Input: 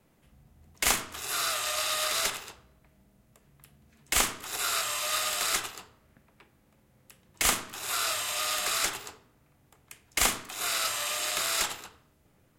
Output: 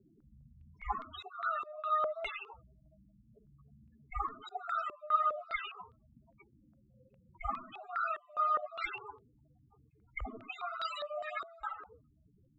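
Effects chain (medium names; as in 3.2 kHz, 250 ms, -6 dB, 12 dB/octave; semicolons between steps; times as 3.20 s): single-diode clipper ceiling -23 dBFS; loudest bins only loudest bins 8; step-sequenced low-pass 4.9 Hz 390–3600 Hz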